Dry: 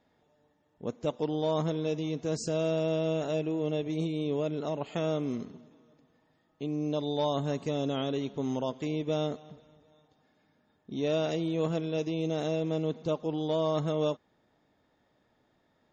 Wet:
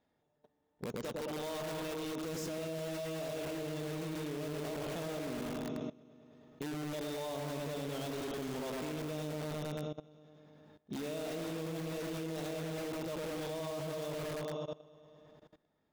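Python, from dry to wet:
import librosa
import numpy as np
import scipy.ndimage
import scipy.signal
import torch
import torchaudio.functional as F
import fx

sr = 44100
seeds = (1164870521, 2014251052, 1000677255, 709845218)

p1 = fx.low_shelf(x, sr, hz=420.0, db=-10.5, at=(0.93, 2.18))
p2 = fx.echo_opening(p1, sr, ms=105, hz=750, octaves=1, feedback_pct=70, wet_db=-3)
p3 = (np.mod(10.0 ** (30.5 / 20.0) * p2 + 1.0, 2.0) - 1.0) / 10.0 ** (30.5 / 20.0)
p4 = p2 + (p3 * 10.0 ** (-3.0 / 20.0))
p5 = fx.level_steps(p4, sr, step_db=20)
y = p5 * 10.0 ** (1.0 / 20.0)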